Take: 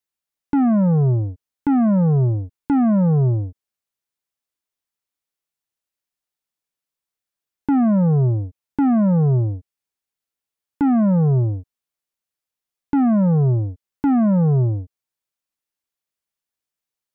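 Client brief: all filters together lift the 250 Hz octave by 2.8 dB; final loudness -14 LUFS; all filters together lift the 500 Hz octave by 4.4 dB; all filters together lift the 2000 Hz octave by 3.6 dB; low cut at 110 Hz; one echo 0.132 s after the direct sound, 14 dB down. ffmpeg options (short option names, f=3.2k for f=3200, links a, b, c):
-af "highpass=110,equalizer=f=250:t=o:g=3,equalizer=f=500:t=o:g=4.5,equalizer=f=2k:t=o:g=4.5,aecho=1:1:132:0.2,volume=2dB"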